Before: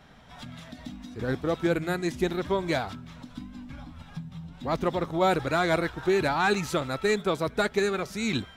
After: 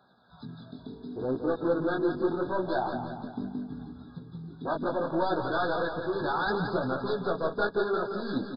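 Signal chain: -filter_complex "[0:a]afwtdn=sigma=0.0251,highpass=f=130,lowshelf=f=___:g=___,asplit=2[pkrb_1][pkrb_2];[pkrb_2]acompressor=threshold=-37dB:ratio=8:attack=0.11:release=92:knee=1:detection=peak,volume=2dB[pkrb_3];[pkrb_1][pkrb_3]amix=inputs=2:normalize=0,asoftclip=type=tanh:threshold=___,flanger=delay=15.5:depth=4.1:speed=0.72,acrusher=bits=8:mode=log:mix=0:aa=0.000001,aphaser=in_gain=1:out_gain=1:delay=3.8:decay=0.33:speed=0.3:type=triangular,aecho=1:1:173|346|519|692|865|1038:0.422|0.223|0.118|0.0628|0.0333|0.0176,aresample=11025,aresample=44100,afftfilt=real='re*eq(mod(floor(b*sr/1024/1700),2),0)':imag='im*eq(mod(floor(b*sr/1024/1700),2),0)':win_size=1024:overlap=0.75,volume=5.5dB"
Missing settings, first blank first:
290, -9.5, -27dB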